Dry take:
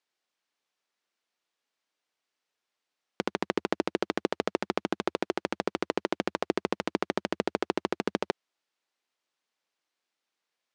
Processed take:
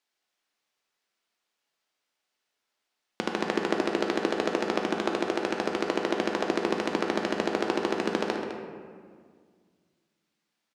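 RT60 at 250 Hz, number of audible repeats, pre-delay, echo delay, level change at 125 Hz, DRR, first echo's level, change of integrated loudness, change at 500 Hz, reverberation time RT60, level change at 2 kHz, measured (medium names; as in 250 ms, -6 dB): 2.5 s, 1, 3 ms, 207 ms, +2.0 dB, 0.5 dB, -12.0 dB, +3.5 dB, +3.5 dB, 1.9 s, +4.0 dB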